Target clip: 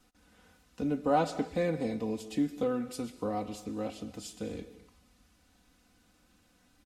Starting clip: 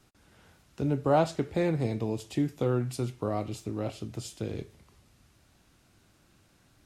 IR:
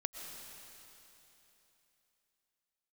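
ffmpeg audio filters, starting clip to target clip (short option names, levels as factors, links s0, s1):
-filter_complex "[0:a]aecho=1:1:4:0.82,asplit=2[s0][s1];[1:a]atrim=start_sample=2205,afade=t=out:st=0.33:d=0.01,atrim=end_sample=14994[s2];[s1][s2]afir=irnorm=-1:irlink=0,volume=0.708[s3];[s0][s3]amix=inputs=2:normalize=0,volume=0.376"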